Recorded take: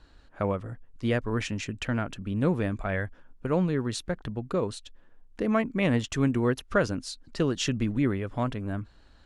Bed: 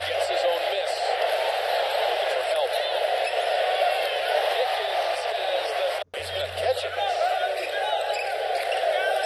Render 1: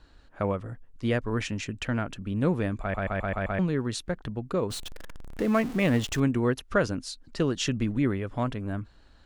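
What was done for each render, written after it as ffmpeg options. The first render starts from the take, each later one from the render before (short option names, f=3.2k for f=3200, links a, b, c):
-filter_complex "[0:a]asettb=1/sr,asplit=3[a][b][c];[a]atrim=end=4.704[d];[b]atrim=start=4.7:end=6.2,asetpts=PTS-STARTPTS,afade=t=in:d=0.004:c=qsin,afade=t=out:st=1.496:d=0.004:c=qsin,aeval=exprs='val(0)+0.5*0.0188*sgn(val(0))':c=same[e];[c]atrim=start=6.196[f];[d][e]acrossfade=d=0.004:c1=hsin:c2=qsin[g];[g][f]acrossfade=d=0.004:c1=qsin:c2=hsin,asplit=7[h][i][j][k][l][m][n];[h]atrim=end=2.942[o];[i]atrim=start=2.808:end=2.942[p];[j]atrim=start=2.808:end=2.942[q];[k]atrim=start=2.808:end=2.942[r];[l]atrim=start=2.808:end=2.942[s];[m]atrim=start=2.808:end=2.942[t];[n]atrim=start=3.588[u];[o][p]acrossfade=d=0.004:c1=hsin:c2=hsin[v];[v][q]acrossfade=d=0.004:c1=hsin:c2=hsin[w];[w][r]acrossfade=d=0.004:c1=hsin:c2=hsin[x];[x][s]acrossfade=d=0.004:c1=hsin:c2=hsin[y];[y][t]acrossfade=d=0.004:c1=hsin:c2=hsin[z];[z][u]acrossfade=d=0.004:c1=hsin:c2=hsin"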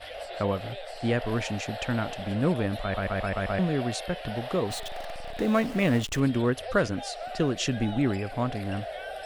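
-filter_complex "[1:a]volume=-13.5dB[a];[0:a][a]amix=inputs=2:normalize=0"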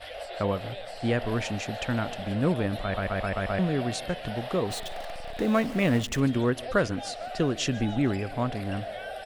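-af "aecho=1:1:148|296|444|592:0.0708|0.0389|0.0214|0.0118"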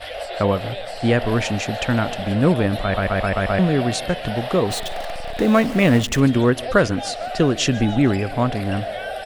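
-af "volume=8.5dB,alimiter=limit=-3dB:level=0:latency=1"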